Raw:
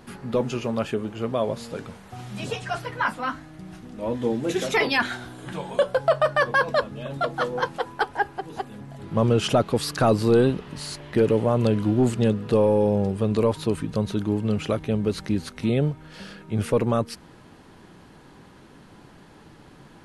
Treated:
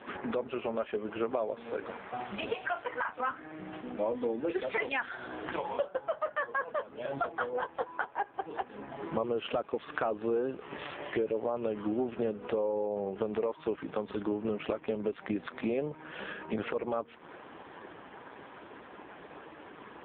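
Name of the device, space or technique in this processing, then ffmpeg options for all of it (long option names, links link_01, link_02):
voicemail: -af "highpass=400,lowpass=2800,acompressor=threshold=-37dB:ratio=8,volume=9dB" -ar 8000 -c:a libopencore_amrnb -b:a 4750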